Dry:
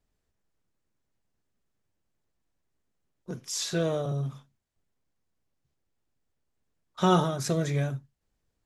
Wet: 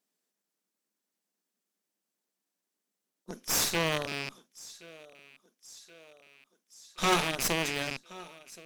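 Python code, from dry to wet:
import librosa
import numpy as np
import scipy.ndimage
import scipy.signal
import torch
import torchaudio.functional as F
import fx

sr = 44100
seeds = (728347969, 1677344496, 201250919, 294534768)

p1 = fx.rattle_buzz(x, sr, strikes_db=-32.0, level_db=-24.0)
p2 = fx.high_shelf(p1, sr, hz=3900.0, db=11.5)
p3 = fx.notch(p2, sr, hz=7000.0, q=25.0)
p4 = 10.0 ** (-17.0 / 20.0) * np.tanh(p3 / 10.0 ** (-17.0 / 20.0))
p5 = p3 + (p4 * 10.0 ** (-5.0 / 20.0))
p6 = fx.brickwall_highpass(p5, sr, low_hz=170.0)
p7 = fx.echo_thinned(p6, sr, ms=1075, feedback_pct=68, hz=250.0, wet_db=-17.5)
p8 = fx.cheby_harmonics(p7, sr, harmonics=(2, 4, 8), levels_db=(-7, -6, -22), full_scale_db=-6.5)
y = p8 * 10.0 ** (-8.5 / 20.0)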